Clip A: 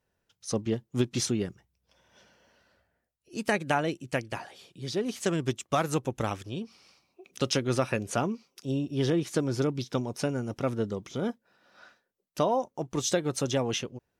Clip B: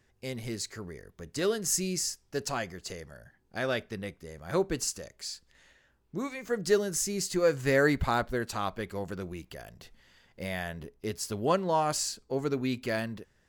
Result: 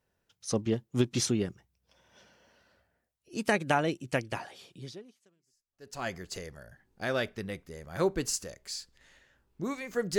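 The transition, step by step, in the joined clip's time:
clip A
5.42 switch to clip B from 1.96 s, crossfade 1.30 s exponential

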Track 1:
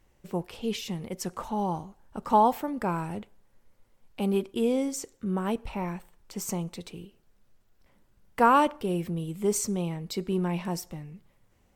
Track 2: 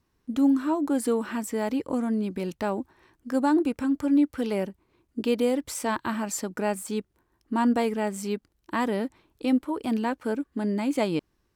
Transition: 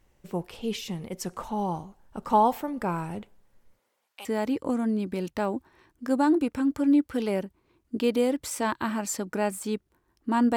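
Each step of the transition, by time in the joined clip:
track 1
3.77–4.25 HPF 270 Hz -> 1300 Hz
4.25 switch to track 2 from 1.49 s

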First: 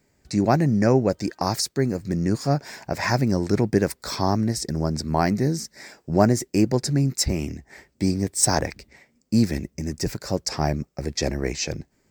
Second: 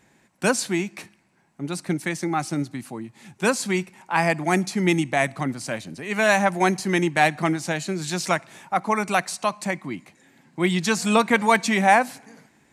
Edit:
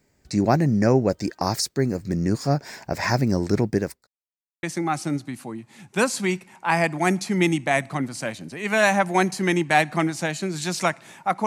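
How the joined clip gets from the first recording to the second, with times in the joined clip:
first
3.48–4.07 fade out equal-power
4.07–4.63 mute
4.63 switch to second from 2.09 s

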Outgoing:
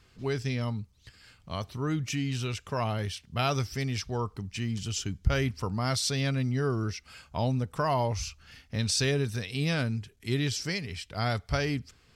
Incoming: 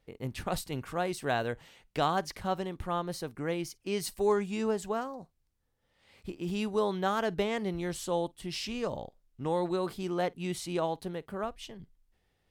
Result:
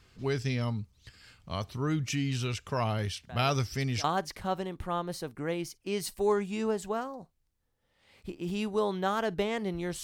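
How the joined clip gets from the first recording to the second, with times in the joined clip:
outgoing
3.29 add incoming from 1.29 s 0.75 s -17.5 dB
4.04 switch to incoming from 2.04 s

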